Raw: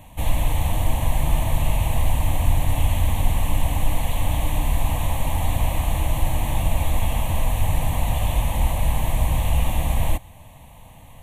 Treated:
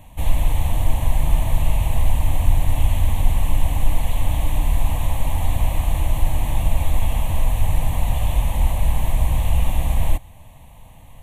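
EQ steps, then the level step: low shelf 63 Hz +7 dB; -2.0 dB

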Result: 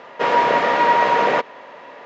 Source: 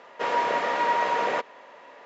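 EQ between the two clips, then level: LPF 5600 Hz 12 dB/oct; low shelf 160 Hz +9.5 dB; +8.0 dB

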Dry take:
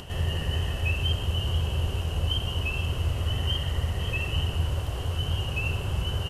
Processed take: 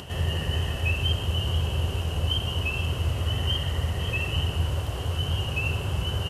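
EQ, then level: HPF 61 Hz; +2.0 dB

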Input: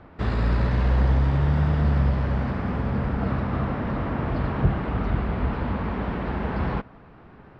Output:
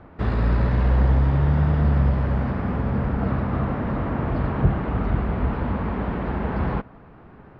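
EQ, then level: high shelf 3200 Hz -9.5 dB; +2.0 dB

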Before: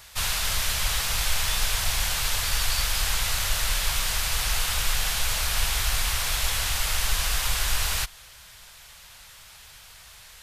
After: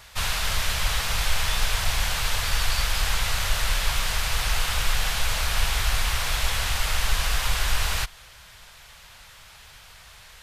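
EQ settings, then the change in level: high shelf 4700 Hz -8.5 dB; +3.0 dB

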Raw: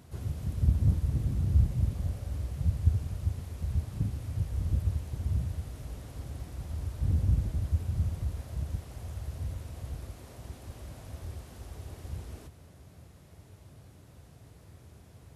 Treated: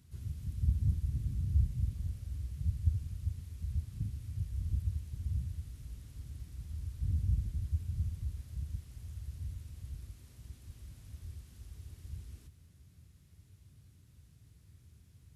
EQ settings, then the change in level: passive tone stack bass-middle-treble 6-0-2; +7.5 dB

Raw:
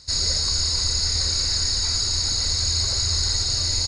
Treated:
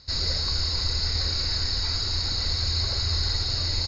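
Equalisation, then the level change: LPF 5100 Hz 24 dB/oct; air absorption 59 m; 0.0 dB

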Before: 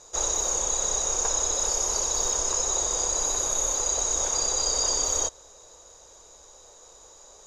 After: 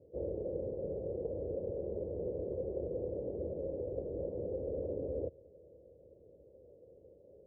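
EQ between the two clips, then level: HPF 93 Hz 24 dB/oct; Chebyshev low-pass 550 Hz, order 5; low shelf 140 Hz +11.5 dB; 0.0 dB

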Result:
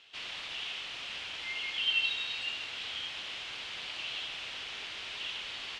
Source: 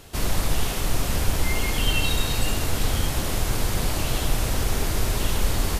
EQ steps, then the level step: band-pass 3000 Hz, Q 2.8; air absorption 100 m; +1.5 dB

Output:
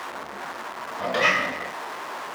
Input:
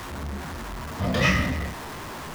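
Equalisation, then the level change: HPF 570 Hz 12 dB/oct; high shelf 2600 Hz -8.5 dB; high shelf 11000 Hz -6 dB; +6.5 dB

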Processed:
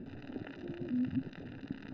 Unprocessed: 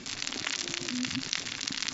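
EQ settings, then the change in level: running mean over 40 samples; air absorption 330 m; +3.0 dB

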